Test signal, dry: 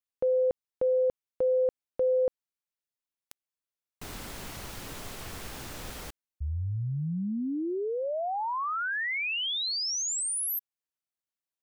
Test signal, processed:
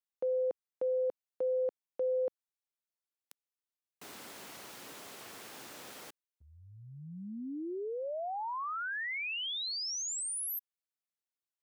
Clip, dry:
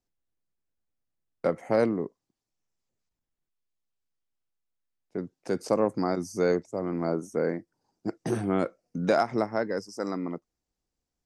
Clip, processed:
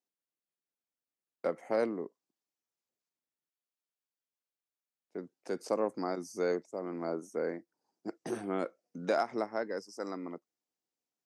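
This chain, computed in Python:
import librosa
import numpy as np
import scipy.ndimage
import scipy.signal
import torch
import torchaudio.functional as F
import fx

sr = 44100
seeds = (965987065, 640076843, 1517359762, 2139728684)

y = scipy.signal.sosfilt(scipy.signal.butter(2, 260.0, 'highpass', fs=sr, output='sos'), x)
y = y * 10.0 ** (-6.0 / 20.0)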